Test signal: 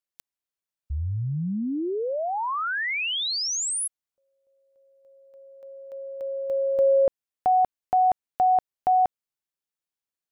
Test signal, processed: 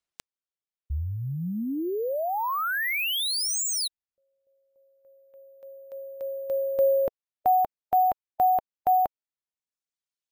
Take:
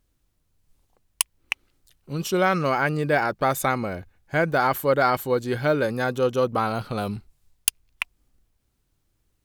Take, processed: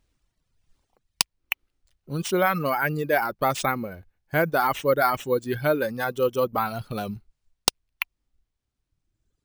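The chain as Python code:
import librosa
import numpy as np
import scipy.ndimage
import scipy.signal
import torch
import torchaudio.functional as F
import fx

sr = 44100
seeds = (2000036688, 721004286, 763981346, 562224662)

y = np.repeat(x[::3], 3)[:len(x)]
y = fx.dereverb_blind(y, sr, rt60_s=1.8)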